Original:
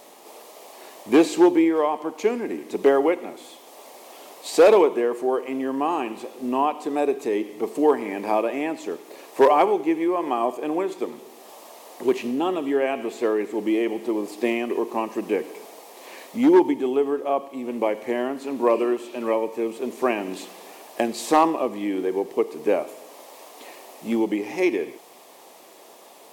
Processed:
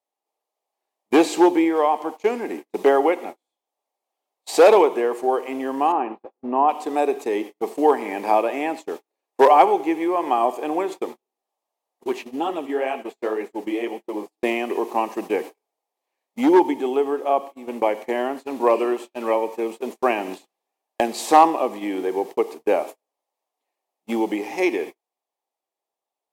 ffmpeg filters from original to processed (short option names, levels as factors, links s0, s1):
-filter_complex "[0:a]asettb=1/sr,asplit=3[s0][s1][s2];[s0]atrim=end=5.924[s3];[s1]atrim=start=5.92:end=6.69,asetpts=PTS-STARTPTS,afade=t=in:d=0.004:c=qsin,afade=t=out:st=0.766:d=0.004:c=qsin,lowpass=1500[s4];[s2]atrim=start=6.686[s5];[s3][s4]acrossfade=d=0.004:c1=hsin:c2=qsin[s6];[s6][s5]acrossfade=d=0.004:c1=qsin:c2=hsin,asplit=3[s7][s8][s9];[s7]afade=t=out:st=12.02:d=0.02[s10];[s8]flanger=delay=3:depth=9.1:regen=-24:speed=2:shape=triangular,afade=t=in:st=12.02:d=0.02,afade=t=out:st=14.42:d=0.02[s11];[s9]afade=t=in:st=14.42:d=0.02[s12];[s10][s11][s12]amix=inputs=3:normalize=0,highpass=f=330:p=1,equalizer=f=800:w=4.4:g=6,agate=range=0.00708:threshold=0.0224:ratio=16:detection=peak,volume=1.33"